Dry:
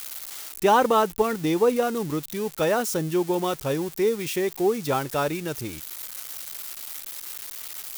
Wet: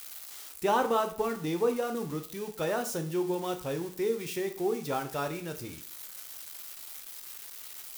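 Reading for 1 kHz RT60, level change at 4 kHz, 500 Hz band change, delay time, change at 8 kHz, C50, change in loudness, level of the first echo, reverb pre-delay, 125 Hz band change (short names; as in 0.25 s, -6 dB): 0.45 s, -7.5 dB, -7.0 dB, none, -7.5 dB, 12.0 dB, -7.5 dB, none, 5 ms, -7.0 dB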